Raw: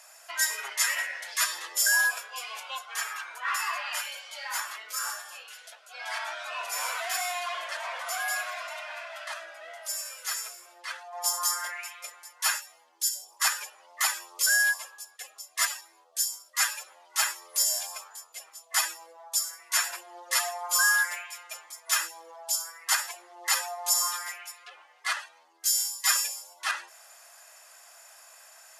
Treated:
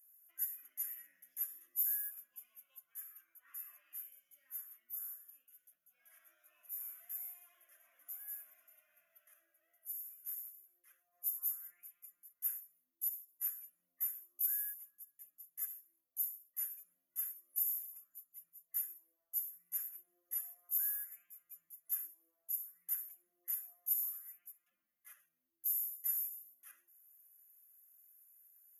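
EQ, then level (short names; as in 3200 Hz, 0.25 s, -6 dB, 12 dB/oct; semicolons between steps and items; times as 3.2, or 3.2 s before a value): inverse Chebyshev band-stop 400–8600 Hz, stop band 40 dB; bell 6900 Hz +6.5 dB 0.32 oct; +4.5 dB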